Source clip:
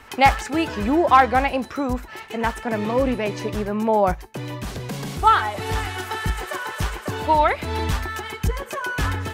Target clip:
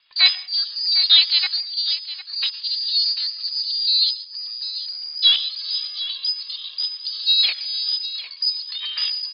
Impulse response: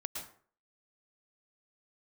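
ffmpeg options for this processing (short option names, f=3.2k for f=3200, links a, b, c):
-filter_complex "[0:a]afwtdn=0.0562,lowpass=f=3.3k:t=q:w=0.5098,lowpass=f=3.3k:t=q:w=0.6013,lowpass=f=3.3k:t=q:w=0.9,lowpass=f=3.3k:t=q:w=2.563,afreqshift=-3900,aecho=1:1:751:0.211,asplit=2[a][b];[1:a]atrim=start_sample=2205,afade=t=out:st=0.34:d=0.01,atrim=end_sample=15435[c];[b][c]afir=irnorm=-1:irlink=0,volume=-14dB[d];[a][d]amix=inputs=2:normalize=0,asetrate=57191,aresample=44100,atempo=0.771105,volume=-1.5dB"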